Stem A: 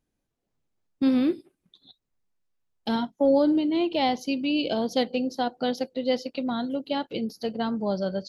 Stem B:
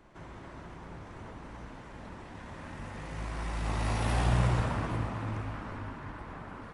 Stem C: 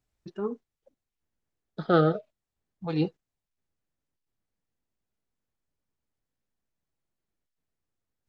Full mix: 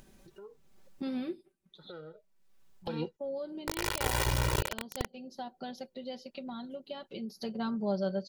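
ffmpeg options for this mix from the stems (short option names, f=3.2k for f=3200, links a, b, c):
-filter_complex "[0:a]aecho=1:1:5.2:0.67,afade=t=out:st=1.19:d=0.59:silence=0.398107,afade=t=in:st=7.16:d=0.38:silence=0.237137,asplit=2[a][b];[1:a]acrusher=bits=3:mix=0:aa=0.000001,volume=-3dB[c];[2:a]acontrast=38,volume=-16dB[d];[b]apad=whole_len=365498[e];[d][e]sidechaingate=range=-31dB:threshold=-60dB:ratio=16:detection=peak[f];[c][f]amix=inputs=2:normalize=0,aecho=1:1:2.1:0.94,alimiter=limit=-20dB:level=0:latency=1:release=26,volume=0dB[g];[a][g]amix=inputs=2:normalize=0,acompressor=mode=upward:threshold=-33dB:ratio=2.5"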